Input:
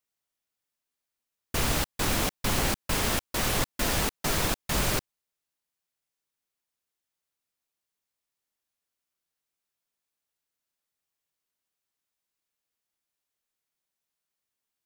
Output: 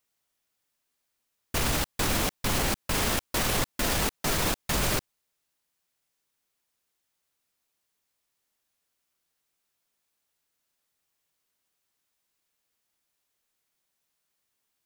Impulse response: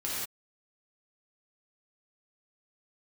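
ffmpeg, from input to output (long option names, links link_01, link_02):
-af "alimiter=limit=-24dB:level=0:latency=1:release=40,volume=7dB"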